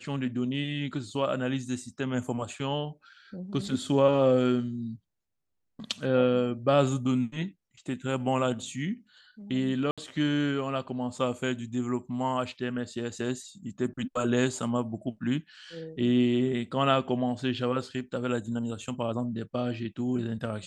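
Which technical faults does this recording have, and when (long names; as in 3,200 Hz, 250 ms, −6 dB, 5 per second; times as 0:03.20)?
0:09.91–0:09.98: drop-out 66 ms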